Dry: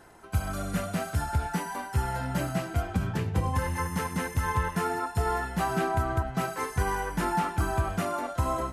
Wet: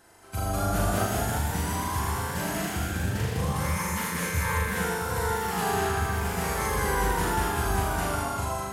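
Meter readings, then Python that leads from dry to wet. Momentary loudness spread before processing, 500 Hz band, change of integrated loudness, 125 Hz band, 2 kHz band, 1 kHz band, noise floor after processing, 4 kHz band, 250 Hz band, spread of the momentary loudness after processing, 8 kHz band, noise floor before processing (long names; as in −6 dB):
3 LU, +2.0 dB, +2.0 dB, +0.5 dB, +4.0 dB, +1.5 dB, −33 dBFS, +6.5 dB, +0.5 dB, 4 LU, +8.0 dB, −41 dBFS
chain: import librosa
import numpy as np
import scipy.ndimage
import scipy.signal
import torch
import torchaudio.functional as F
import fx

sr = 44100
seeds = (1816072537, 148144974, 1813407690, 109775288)

y = fx.high_shelf(x, sr, hz=2500.0, db=9.5)
y = fx.room_flutter(y, sr, wall_m=7.0, rt60_s=1.4)
y = fx.spec_box(y, sr, start_s=0.36, length_s=0.7, low_hz=270.0, high_hz=1400.0, gain_db=7)
y = fx.echo_pitch(y, sr, ms=221, semitones=1, count=3, db_per_echo=-3.0)
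y = y * librosa.db_to_amplitude(-7.5)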